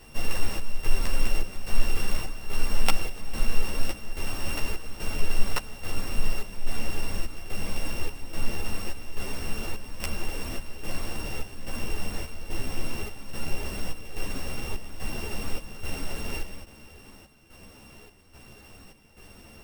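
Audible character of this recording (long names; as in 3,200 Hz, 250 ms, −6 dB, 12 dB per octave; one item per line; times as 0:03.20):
a buzz of ramps at a fixed pitch in blocks of 16 samples
chopped level 1.2 Hz, depth 65%, duty 70%
a shimmering, thickened sound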